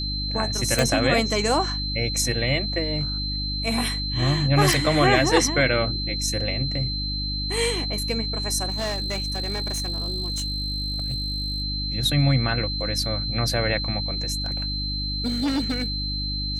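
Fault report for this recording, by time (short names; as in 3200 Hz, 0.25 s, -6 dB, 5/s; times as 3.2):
hum 50 Hz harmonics 6 -30 dBFS
tone 4100 Hz -28 dBFS
0.79 pop
4.73 pop
8.69–11.62 clipped -22.5 dBFS
14.44–16.26 clipped -20.5 dBFS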